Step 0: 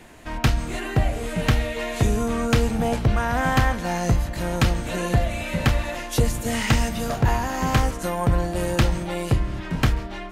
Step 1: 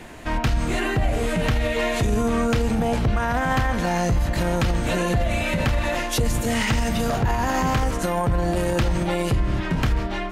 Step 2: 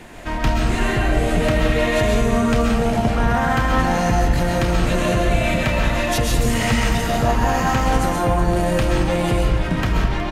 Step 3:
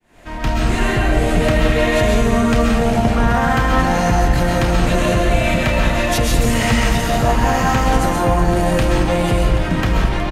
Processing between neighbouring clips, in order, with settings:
treble shelf 6 kHz -4.5 dB; peak limiter -20 dBFS, peak gain reduction 10.5 dB; trim +6.5 dB
delay 367 ms -13.5 dB; reverberation RT60 0.95 s, pre-delay 90 ms, DRR -1.5 dB
fade-in on the opening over 0.67 s; delay 780 ms -13 dB; trim +2.5 dB

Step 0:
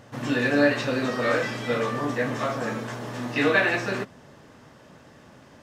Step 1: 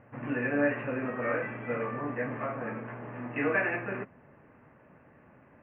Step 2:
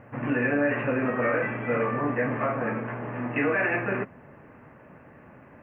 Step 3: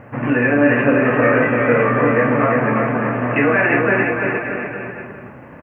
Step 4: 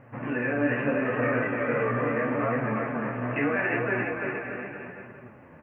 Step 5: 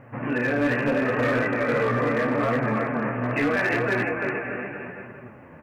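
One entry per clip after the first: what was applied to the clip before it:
steep low-pass 2.6 kHz 72 dB/octave; trim -7 dB
peak limiter -23.5 dBFS, peak gain reduction 8.5 dB; trim +7.5 dB
bouncing-ball echo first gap 340 ms, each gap 0.85×, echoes 5; trim +9 dB
flange 0.77 Hz, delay 7.1 ms, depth 9.9 ms, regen +42%; trim -7.5 dB
hard clipper -21.5 dBFS, distortion -17 dB; trim +4 dB

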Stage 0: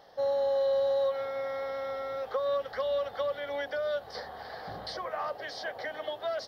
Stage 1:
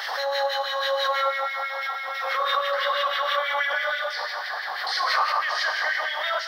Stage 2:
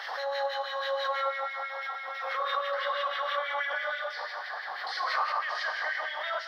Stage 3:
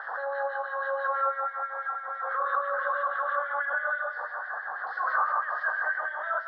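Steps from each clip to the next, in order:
Schroeder reverb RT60 2.4 s, combs from 33 ms, DRR -2 dB; LFO high-pass sine 6.1 Hz 970–2100 Hz; swell ahead of each attack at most 28 dB/s; trim +6 dB
low-pass 2.9 kHz 6 dB/octave; trim -5.5 dB
FFT filter 880 Hz 0 dB, 1.6 kHz +7 dB, 2.3 kHz -26 dB, 3.5 kHz -21 dB, 6.5 kHz -29 dB

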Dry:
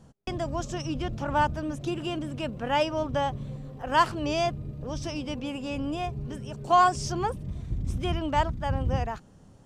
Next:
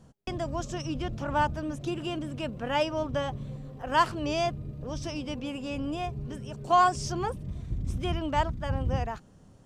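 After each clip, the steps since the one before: band-stop 840 Hz, Q 25; trim -1.5 dB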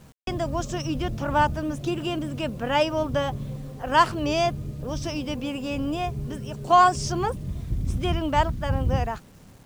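bit crusher 10-bit; trim +5 dB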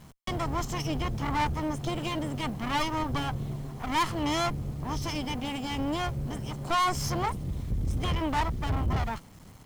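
comb filter that takes the minimum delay 0.96 ms; saturation -22 dBFS, distortion -8 dB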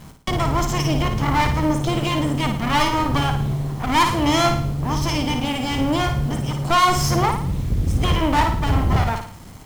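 short-mantissa float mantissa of 4-bit; on a send: flutter echo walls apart 9.5 m, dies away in 0.51 s; on the sum: trim +9 dB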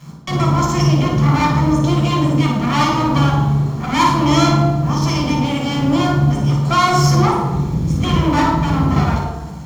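reverberation RT60 1.2 s, pre-delay 3 ms, DRR -1 dB; trim -5.5 dB

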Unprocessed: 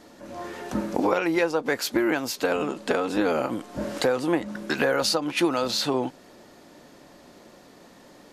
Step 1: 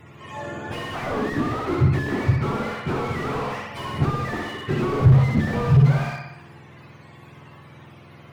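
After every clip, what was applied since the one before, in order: spectrum inverted on a logarithmic axis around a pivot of 780 Hz; flutter echo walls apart 10.4 m, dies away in 0.8 s; slew-rate limiter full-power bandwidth 29 Hz; trim +4 dB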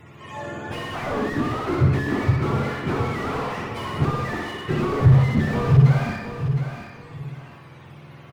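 feedback delay 713 ms, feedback 26%, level -9 dB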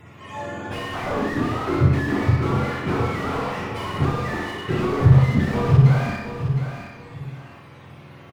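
doubling 36 ms -5.5 dB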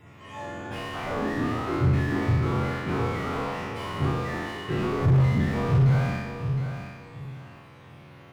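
spectral sustain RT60 1.15 s; overload inside the chain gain 8.5 dB; trim -7 dB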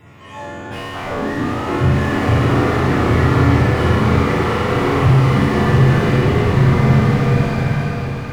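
swelling reverb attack 1580 ms, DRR -4.5 dB; trim +6.5 dB

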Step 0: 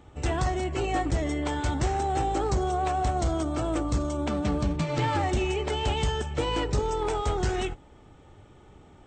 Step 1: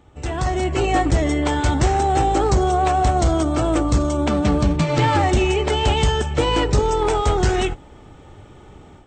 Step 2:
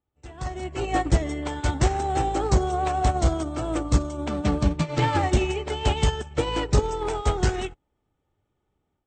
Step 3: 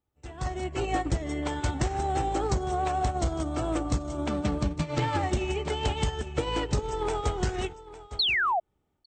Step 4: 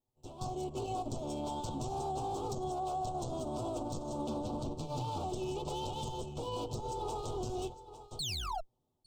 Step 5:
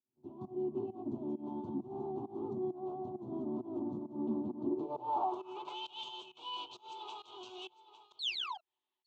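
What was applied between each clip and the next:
level rider gain up to 9 dB
upward expansion 2.5:1, over -34 dBFS
painted sound fall, 8.19–8.60 s, 640–4500 Hz -19 dBFS; delay 855 ms -18 dB; compression, threshold -24 dBFS, peak gain reduction 10 dB
comb filter that takes the minimum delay 8 ms; Chebyshev band-stop 930–3600 Hz, order 2; peak limiter -27 dBFS, peak gain reduction 9.5 dB; trim -2.5 dB
volume shaper 133 bpm, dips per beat 1, -23 dB, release 194 ms; band-pass sweep 210 Hz -> 2.9 kHz, 4.52–5.89 s; cabinet simulation 130–6100 Hz, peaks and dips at 160 Hz -8 dB, 360 Hz +9 dB, 510 Hz -9 dB, 1 kHz +9 dB, 1.8 kHz +7 dB, 5.2 kHz -9 dB; trim +7 dB

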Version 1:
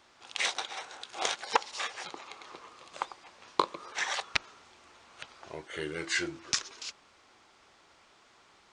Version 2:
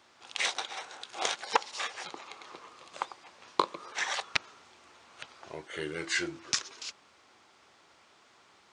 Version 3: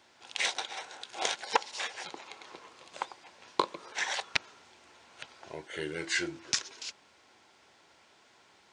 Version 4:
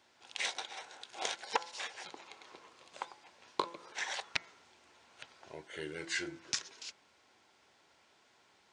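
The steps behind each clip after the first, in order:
high-pass 81 Hz
band-stop 1.2 kHz, Q 6.4
de-hum 169.8 Hz, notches 13; trim -5.5 dB

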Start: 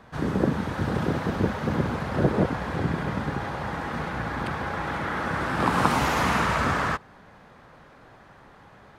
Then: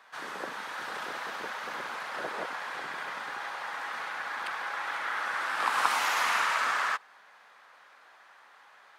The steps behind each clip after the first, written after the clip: high-pass 1.1 kHz 12 dB/octave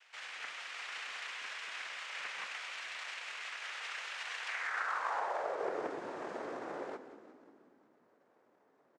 noise-vocoded speech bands 3; frequency-shifting echo 180 ms, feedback 57%, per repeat -35 Hz, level -13 dB; band-pass sweep 2.7 kHz -> 260 Hz, 4.43–5.97 s; trim +2.5 dB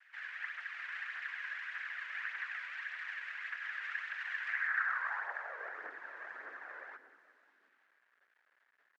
phaser 1.7 Hz, delay 2.1 ms, feedback 39%; bit crusher 11-bit; band-pass filter 1.7 kHz, Q 5.3; trim +7 dB

